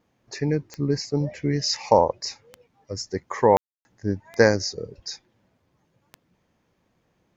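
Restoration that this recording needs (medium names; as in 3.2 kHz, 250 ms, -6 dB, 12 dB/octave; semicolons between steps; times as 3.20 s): de-click; room tone fill 3.57–3.85 s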